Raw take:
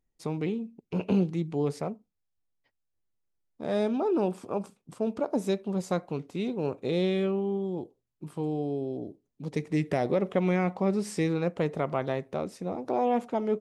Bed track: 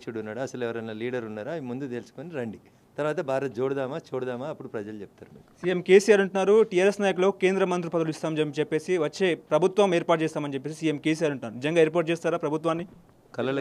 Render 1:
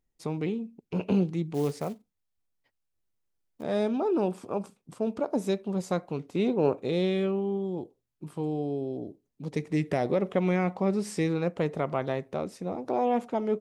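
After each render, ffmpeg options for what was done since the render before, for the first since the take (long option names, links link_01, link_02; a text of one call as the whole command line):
ffmpeg -i in.wav -filter_complex "[0:a]asettb=1/sr,asplit=3[link_01][link_02][link_03];[link_01]atrim=end=1.544[link_04];[link_02]atrim=start=1.54:end=3.63,asetpts=PTS-STARTPTS,afade=type=in:duration=0.004:curve=qsin,afade=type=out:start_time=2.086:duration=0.004:curve=qsin,acrusher=bits=5:mode=log:mix=0:aa=0.000001[link_05];[link_03]atrim=start=3.626[link_06];[link_04][link_05]acrossfade=duration=0.004:curve1=hsin:curve2=qsin[link_07];[link_07][link_06]acrossfade=duration=0.004:curve1=qsin:curve2=hsin,asettb=1/sr,asplit=3[link_08][link_09][link_10];[link_08]atrim=end=6.354[link_11];[link_09]atrim=start=6.35:end=6.83,asetpts=PTS-STARTPTS,afade=type=in:duration=0.004:curve=qsin,afade=type=out:start_time=0.476:duration=0.004:curve=qsin,equalizer=frequency=660:width=0.35:gain=7.5[link_12];[link_10]atrim=start=6.826[link_13];[link_11][link_12]acrossfade=duration=0.004:curve1=hsin:curve2=qsin[link_14];[link_14][link_13]acrossfade=duration=0.004:curve1=qsin:curve2=hsin" out.wav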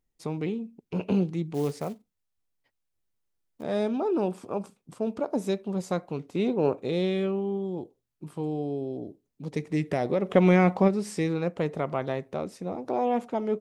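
ffmpeg -i in.wav -filter_complex "[0:a]asplit=3[link_01][link_02][link_03];[link_01]afade=type=out:start_time=10.29:duration=0.02[link_04];[link_02]acontrast=74,afade=type=in:start_time=10.29:duration=0.02,afade=type=out:start_time=10.87:duration=0.02[link_05];[link_03]afade=type=in:start_time=10.87:duration=0.02[link_06];[link_04][link_05][link_06]amix=inputs=3:normalize=0" out.wav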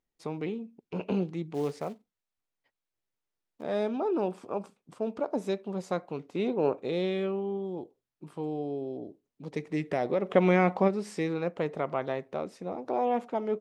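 ffmpeg -i in.wav -af "lowpass=frequency=3600:poles=1,lowshelf=frequency=200:gain=-10.5" out.wav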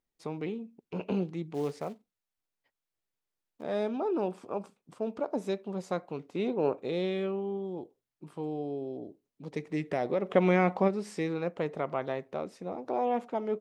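ffmpeg -i in.wav -af "volume=-1.5dB" out.wav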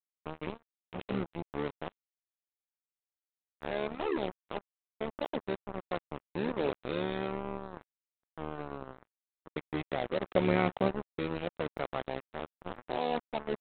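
ffmpeg -i in.wav -af "aresample=8000,acrusher=bits=4:mix=0:aa=0.5,aresample=44100,tremolo=f=74:d=0.824" out.wav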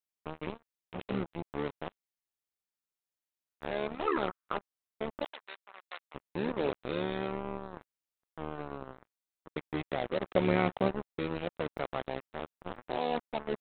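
ffmpeg -i in.wav -filter_complex "[0:a]asettb=1/sr,asplit=3[link_01][link_02][link_03];[link_01]atrim=end=4.074[link_04];[link_02]atrim=start=4.07:end=4.57,asetpts=PTS-STARTPTS,afade=type=in:duration=0.004:curve=qsin,afade=type=out:start_time=0.496:duration=0.004:curve=qsin,equalizer=frequency=1300:width_type=o:width=0.63:gain=14.5[link_05];[link_03]atrim=start=4.566[link_06];[link_04][link_05]acrossfade=duration=0.004:curve1=hsin:curve2=qsin[link_07];[link_07][link_06]acrossfade=duration=0.004:curve1=qsin:curve2=hsin,asplit=3[link_08][link_09][link_10];[link_08]afade=type=out:start_time=5.24:duration=0.02[link_11];[link_09]highpass=1500,afade=type=in:start_time=5.24:duration=0.02,afade=type=out:start_time=6.14:duration=0.02[link_12];[link_10]afade=type=in:start_time=6.14:duration=0.02[link_13];[link_11][link_12][link_13]amix=inputs=3:normalize=0" out.wav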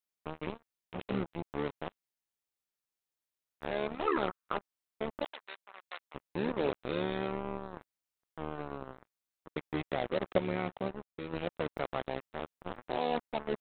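ffmpeg -i in.wav -filter_complex "[0:a]asplit=3[link_01][link_02][link_03];[link_01]atrim=end=10.382[link_04];[link_02]atrim=start=10.378:end=11.332,asetpts=PTS-STARTPTS,volume=-7dB[link_05];[link_03]atrim=start=11.328[link_06];[link_04][link_05]acrossfade=duration=0.004:curve1=hsin:curve2=hsin[link_07];[link_07][link_06]acrossfade=duration=0.004:curve1=hsin:curve2=hsin" out.wav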